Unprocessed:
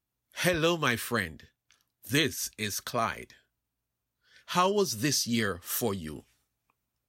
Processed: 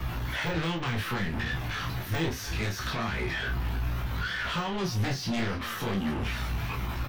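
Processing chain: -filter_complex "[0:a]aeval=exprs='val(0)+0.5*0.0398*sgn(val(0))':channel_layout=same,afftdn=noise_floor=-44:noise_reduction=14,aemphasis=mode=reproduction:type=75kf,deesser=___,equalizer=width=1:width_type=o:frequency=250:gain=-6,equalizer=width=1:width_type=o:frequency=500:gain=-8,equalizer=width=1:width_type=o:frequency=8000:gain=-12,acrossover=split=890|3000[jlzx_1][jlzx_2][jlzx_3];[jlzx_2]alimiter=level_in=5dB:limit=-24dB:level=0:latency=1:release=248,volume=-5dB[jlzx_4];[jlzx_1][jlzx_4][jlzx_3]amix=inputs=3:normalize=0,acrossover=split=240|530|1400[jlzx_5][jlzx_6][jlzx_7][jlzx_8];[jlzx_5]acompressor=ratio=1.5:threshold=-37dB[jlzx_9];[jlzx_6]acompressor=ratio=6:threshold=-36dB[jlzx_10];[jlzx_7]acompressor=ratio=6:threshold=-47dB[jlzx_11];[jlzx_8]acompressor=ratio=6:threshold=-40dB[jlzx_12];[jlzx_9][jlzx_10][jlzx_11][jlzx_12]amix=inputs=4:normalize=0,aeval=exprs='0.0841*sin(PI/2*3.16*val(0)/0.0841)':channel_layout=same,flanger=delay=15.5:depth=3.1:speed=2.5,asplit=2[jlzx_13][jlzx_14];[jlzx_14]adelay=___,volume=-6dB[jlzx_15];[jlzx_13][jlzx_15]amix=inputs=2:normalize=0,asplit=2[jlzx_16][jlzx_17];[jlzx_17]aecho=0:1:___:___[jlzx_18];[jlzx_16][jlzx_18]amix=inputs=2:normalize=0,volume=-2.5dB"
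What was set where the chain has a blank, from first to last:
0.9, 30, 301, 0.141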